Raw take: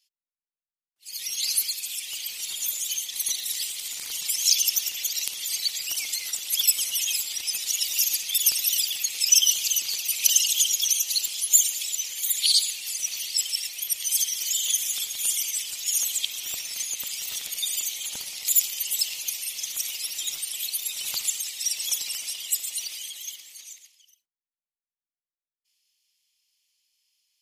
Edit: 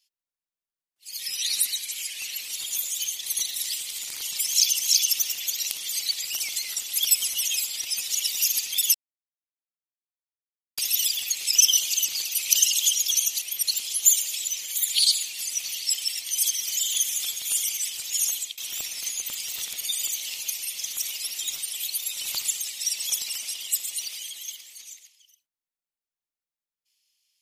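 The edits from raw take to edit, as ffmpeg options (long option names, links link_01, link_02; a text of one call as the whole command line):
ffmpeg -i in.wav -filter_complex "[0:a]asplit=10[link_01][link_02][link_03][link_04][link_05][link_06][link_07][link_08][link_09][link_10];[link_01]atrim=end=1.254[link_11];[link_02]atrim=start=1.25:end=2.31,asetpts=PTS-STARTPTS,asetrate=40131,aresample=44100,atrim=end_sample=51369,asetpts=PTS-STARTPTS[link_12];[link_03]atrim=start=2.306:end=4.682[link_13];[link_04]atrim=start=4.348:end=8.51,asetpts=PTS-STARTPTS,afade=type=out:start_time=4.158:duration=0.004:curve=hsin,apad=pad_dur=1.83[link_14];[link_05]atrim=start=8.51:end=11.152,asetpts=PTS-STARTPTS,afade=type=in:duration=0.004:curve=hsin[link_15];[link_06]atrim=start=13.718:end=13.982[link_16];[link_07]atrim=start=11.148:end=13.722[link_17];[link_08]atrim=start=13.978:end=16.31,asetpts=PTS-STARTPTS,afade=type=out:start_time=1.972:duration=0.36:curve=qsin:silence=0.0794328[link_18];[link_09]atrim=start=16.31:end=17.982,asetpts=PTS-STARTPTS,afade=type=in:duration=0.004:curve=hsin:silence=0.0794328[link_19];[link_10]atrim=start=19.038[link_20];[link_11][link_12]acrossfade=duration=0.004:curve1=hsin:curve2=hsin[link_21];[link_21][link_13]acrossfade=duration=0.004:curve1=hsin:curve2=hsin[link_22];[link_14][link_15]concat=n=2:v=0:a=1[link_23];[link_22][link_23]acrossfade=duration=0.004:curve1=hsin:curve2=hsin[link_24];[link_24][link_16]acrossfade=duration=0.004:curve1=hsin:curve2=hsin[link_25];[link_25][link_17]acrossfade=duration=0.004:curve1=hsin:curve2=hsin[link_26];[link_18][link_19]concat=n=2:v=0:a=1[link_27];[link_26][link_27]acrossfade=duration=0.004:curve1=hsin:curve2=hsin[link_28];[link_28][link_20]acrossfade=duration=0.004:curve1=hsin:curve2=hsin" out.wav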